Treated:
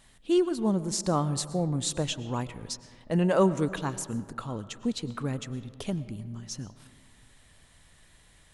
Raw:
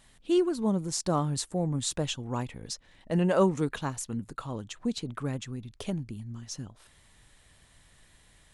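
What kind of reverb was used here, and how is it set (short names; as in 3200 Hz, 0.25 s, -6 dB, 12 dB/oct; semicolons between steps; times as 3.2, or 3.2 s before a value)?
digital reverb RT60 1.9 s, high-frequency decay 0.4×, pre-delay 75 ms, DRR 15 dB; gain +1 dB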